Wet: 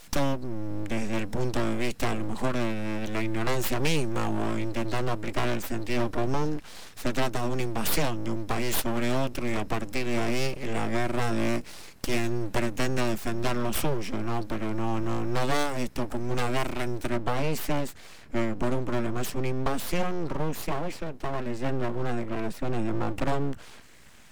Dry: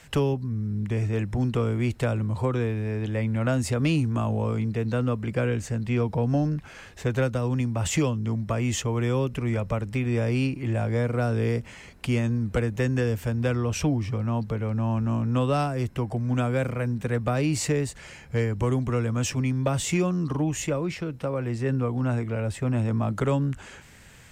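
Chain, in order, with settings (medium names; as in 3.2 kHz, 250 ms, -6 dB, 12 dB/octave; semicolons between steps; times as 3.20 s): treble shelf 2.2 kHz +8 dB, from 17.09 s -2 dB; full-wave rectifier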